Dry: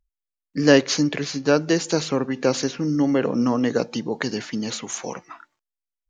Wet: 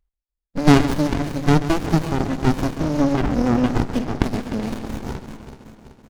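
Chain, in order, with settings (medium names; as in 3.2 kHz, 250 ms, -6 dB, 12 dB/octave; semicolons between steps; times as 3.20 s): backward echo that repeats 190 ms, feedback 72%, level -12 dB; delay 135 ms -12.5 dB; sliding maximum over 65 samples; trim +4 dB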